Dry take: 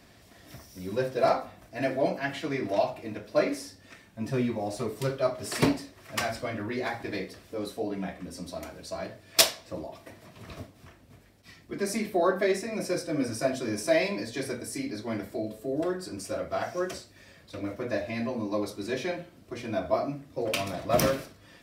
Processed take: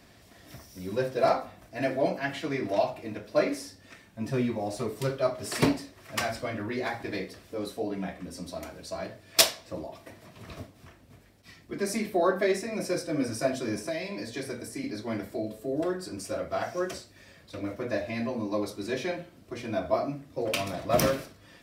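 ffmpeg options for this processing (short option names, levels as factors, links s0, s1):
-filter_complex "[0:a]asettb=1/sr,asplit=3[s0][s1][s2];[s0]atrim=end=13.764[s3];[s1]atrim=start=13.76:end=14.84,asetpts=PTS-STARTPTS,afade=t=in:d=0.004:c=qsin,afade=t=out:st=1.076:d=0.004:c=qsin,acrossover=split=220|2700[s4][s5][s6];[s4]acompressor=threshold=0.00794:ratio=4[s7];[s5]acompressor=threshold=0.0224:ratio=4[s8];[s6]acompressor=threshold=0.00708:ratio=4[s9];[s7][s8][s9]amix=inputs=3:normalize=0[s10];[s2]atrim=start=14.836[s11];[s3][s10]acrossfade=d=0.004:c1=hsin:c2=qsin[s12];[s12][s11]acrossfade=d=0.004:c1=qsin:c2=hsin"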